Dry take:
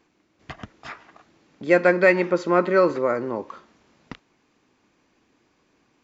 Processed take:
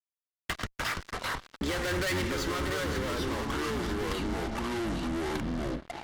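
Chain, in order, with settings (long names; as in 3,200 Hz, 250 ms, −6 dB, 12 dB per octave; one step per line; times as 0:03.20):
sub-octave generator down 2 octaves, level +2 dB
brickwall limiter −13 dBFS, peak gain reduction 10 dB
low-shelf EQ 470 Hz −11.5 dB
fuzz pedal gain 40 dB, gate −48 dBFS
delay with pitch and tempo change per echo 170 ms, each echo −4 semitones, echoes 2
downward compressor, threshold −19 dBFS, peak gain reduction 9 dB
parametric band 740 Hz −5.5 dB 1.3 octaves
notch filter 2,500 Hz, Q 17
level −8.5 dB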